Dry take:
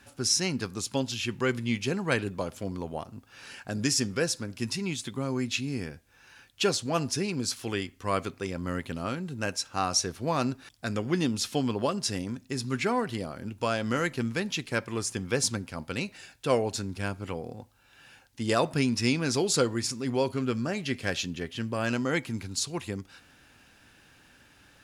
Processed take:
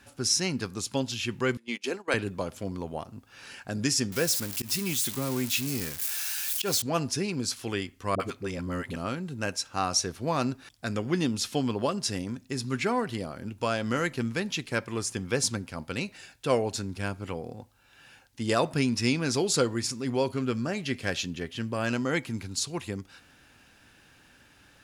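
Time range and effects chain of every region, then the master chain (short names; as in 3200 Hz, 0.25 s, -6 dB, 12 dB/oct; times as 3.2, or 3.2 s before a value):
1.57–2.14 HPF 280 Hz 24 dB/oct + gate -36 dBFS, range -18 dB
4.12–6.82 switching spikes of -23 dBFS + auto swell 0.101 s
8.15–8.96 de-esser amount 85% + dispersion highs, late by 47 ms, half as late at 480 Hz
whole clip: dry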